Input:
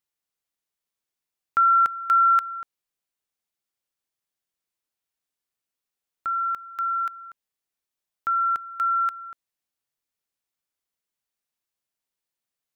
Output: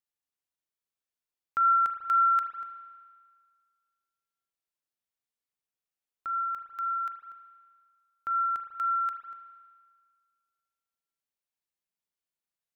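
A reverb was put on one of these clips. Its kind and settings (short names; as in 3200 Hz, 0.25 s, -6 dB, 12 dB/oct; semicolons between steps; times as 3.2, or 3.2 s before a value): spring tank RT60 1.8 s, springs 36 ms, chirp 45 ms, DRR 5 dB; gain -7.5 dB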